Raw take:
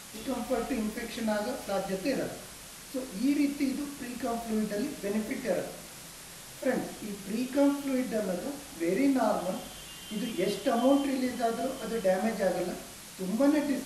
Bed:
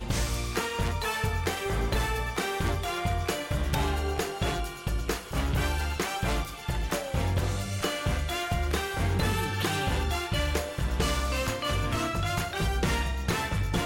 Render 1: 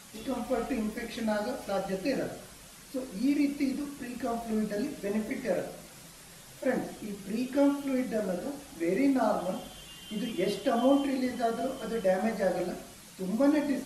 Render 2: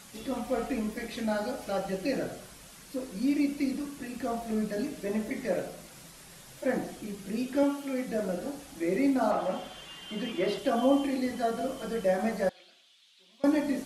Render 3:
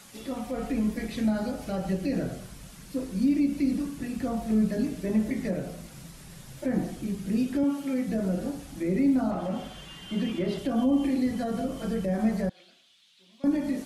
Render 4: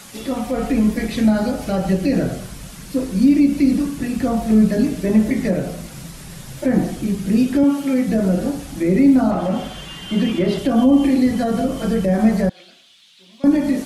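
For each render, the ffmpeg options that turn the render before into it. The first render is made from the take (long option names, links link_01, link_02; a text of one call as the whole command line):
ffmpeg -i in.wav -af "afftdn=noise_reduction=6:noise_floor=-47" out.wav
ffmpeg -i in.wav -filter_complex "[0:a]asettb=1/sr,asplit=3[link_01][link_02][link_03];[link_01]atrim=end=7.634[link_04];[link_02]atrim=start=7.63:end=8.08,asetpts=PTS-STARTPTS,afade=type=in:duration=0.004:curve=qsin,afade=type=out:start_time=0.446:duration=0.004:curve=qsin,highpass=frequency=280:poles=1[link_05];[link_03]atrim=start=8.076[link_06];[link_04][link_05]acrossfade=duration=0.004:curve1=hsin:curve2=qsin[link_07];[link_07][link_06]acrossfade=duration=0.004:curve1=qsin:curve2=hsin,asettb=1/sr,asplit=3[link_08][link_09][link_10];[link_08]atrim=end=9.314[link_11];[link_09]atrim=start=9.31:end=10.58,asetpts=PTS-STARTPTS,afade=type=in:duration=0.004:curve=qsin,afade=type=out:start_time=1.266:duration=0.004:curve=qsin,asplit=2[link_12][link_13];[link_13]highpass=frequency=720:poles=1,volume=12dB,asoftclip=type=tanh:threshold=-17.5dB[link_14];[link_12][link_14]amix=inputs=2:normalize=0,lowpass=frequency=2000:poles=1,volume=-6dB[link_15];[link_10]atrim=start=10.576[link_16];[link_11][link_15]acrossfade=duration=0.004:curve1=hsin:curve2=qsin[link_17];[link_17][link_16]acrossfade=duration=0.004:curve1=qsin:curve2=hsin,asettb=1/sr,asplit=3[link_18][link_19][link_20];[link_18]atrim=end=12.494[link_21];[link_19]atrim=start=12.49:end=13.44,asetpts=PTS-STARTPTS,afade=type=in:duration=0.004:curve=qsin,afade=type=out:start_time=0.946:duration=0.004:curve=qsin,bandpass=frequency=3400:width_type=q:width=4.1[link_22];[link_20]atrim=start=13.436[link_23];[link_21][link_22]acrossfade=duration=0.004:curve1=hsin:curve2=qsin[link_24];[link_24][link_23]acrossfade=duration=0.004:curve1=qsin:curve2=hsin" out.wav
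ffmpeg -i in.wav -filter_complex "[0:a]acrossover=split=220[link_01][link_02];[link_01]dynaudnorm=framelen=260:gausssize=5:maxgain=11.5dB[link_03];[link_02]alimiter=level_in=2dB:limit=-24dB:level=0:latency=1:release=116,volume=-2dB[link_04];[link_03][link_04]amix=inputs=2:normalize=0" out.wav
ffmpeg -i in.wav -af "volume=10.5dB" out.wav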